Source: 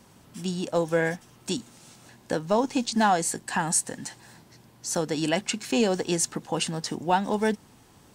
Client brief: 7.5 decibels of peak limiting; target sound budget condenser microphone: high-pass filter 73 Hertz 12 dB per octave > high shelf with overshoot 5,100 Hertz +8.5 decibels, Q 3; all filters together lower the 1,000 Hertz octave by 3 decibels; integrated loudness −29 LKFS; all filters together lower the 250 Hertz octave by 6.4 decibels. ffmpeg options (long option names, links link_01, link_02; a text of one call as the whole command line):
ffmpeg -i in.wav -af "equalizer=frequency=250:width_type=o:gain=-8.5,equalizer=frequency=1000:width_type=o:gain=-3,alimiter=limit=-19.5dB:level=0:latency=1,highpass=73,highshelf=frequency=5100:width_type=q:width=3:gain=8.5,volume=-5dB" out.wav